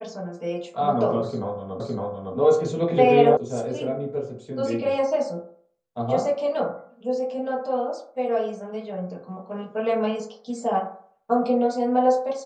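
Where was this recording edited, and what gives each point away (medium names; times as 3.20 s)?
1.80 s: repeat of the last 0.56 s
3.37 s: sound stops dead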